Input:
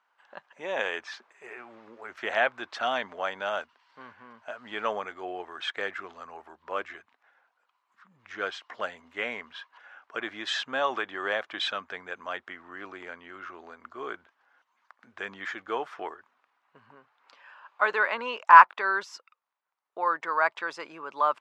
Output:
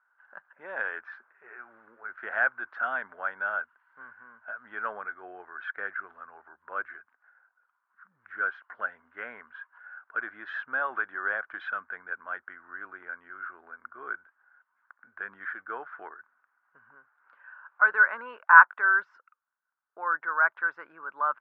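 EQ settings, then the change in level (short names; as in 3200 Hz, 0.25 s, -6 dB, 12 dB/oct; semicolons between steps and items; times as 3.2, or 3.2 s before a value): synth low-pass 1500 Hz, resonance Q 8.1; -10.5 dB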